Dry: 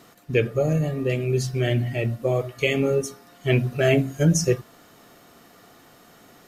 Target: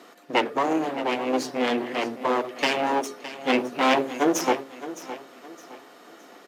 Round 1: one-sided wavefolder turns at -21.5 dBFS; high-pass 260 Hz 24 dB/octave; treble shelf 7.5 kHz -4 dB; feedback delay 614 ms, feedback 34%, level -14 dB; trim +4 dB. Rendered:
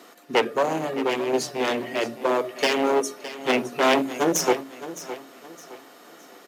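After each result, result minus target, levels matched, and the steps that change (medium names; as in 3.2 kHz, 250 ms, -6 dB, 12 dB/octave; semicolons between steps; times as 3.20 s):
one-sided wavefolder: distortion -14 dB; 8 kHz band +4.0 dB
change: one-sided wavefolder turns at -31.5 dBFS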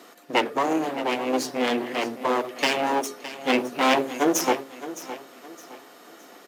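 8 kHz band +3.5 dB
change: treble shelf 7.5 kHz -13 dB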